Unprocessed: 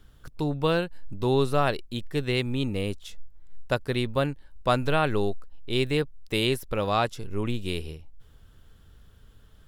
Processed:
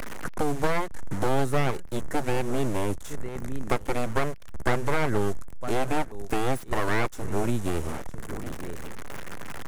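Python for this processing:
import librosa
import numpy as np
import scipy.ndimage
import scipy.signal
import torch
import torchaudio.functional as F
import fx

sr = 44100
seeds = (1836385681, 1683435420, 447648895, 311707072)

y = fx.delta_mod(x, sr, bps=64000, step_db=-38.5)
y = fx.band_shelf(y, sr, hz=3500.0, db=-11.5, octaves=1.3)
y = y + 10.0 ** (-21.0 / 20.0) * np.pad(y, (int(956 * sr / 1000.0), 0))[:len(y)]
y = np.abs(y)
y = fx.band_squash(y, sr, depth_pct=70)
y = F.gain(torch.from_numpy(y), 3.0).numpy()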